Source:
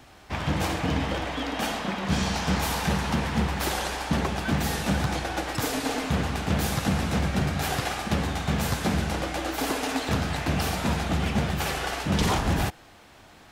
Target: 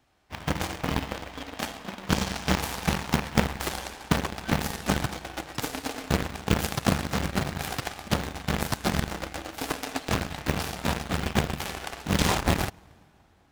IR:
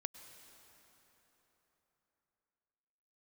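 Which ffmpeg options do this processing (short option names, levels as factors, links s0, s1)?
-filter_complex "[0:a]acrusher=bits=7:mode=log:mix=0:aa=0.000001,asplit=2[s0][s1];[1:a]atrim=start_sample=2205[s2];[s1][s2]afir=irnorm=-1:irlink=0,volume=2.37[s3];[s0][s3]amix=inputs=2:normalize=0,aeval=exprs='0.668*(cos(1*acos(clip(val(0)/0.668,-1,1)))-cos(1*PI/2))+0.211*(cos(3*acos(clip(val(0)/0.668,-1,1)))-cos(3*PI/2))':c=same"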